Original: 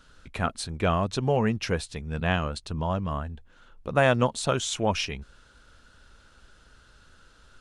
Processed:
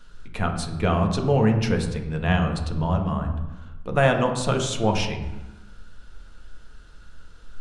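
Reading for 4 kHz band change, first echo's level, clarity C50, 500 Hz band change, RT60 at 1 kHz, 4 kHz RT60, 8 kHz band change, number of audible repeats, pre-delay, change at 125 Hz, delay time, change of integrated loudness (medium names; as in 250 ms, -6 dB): +0.5 dB, no echo, 7.5 dB, +2.5 dB, 1.1 s, 0.75 s, +0.5 dB, no echo, 4 ms, +6.0 dB, no echo, +3.5 dB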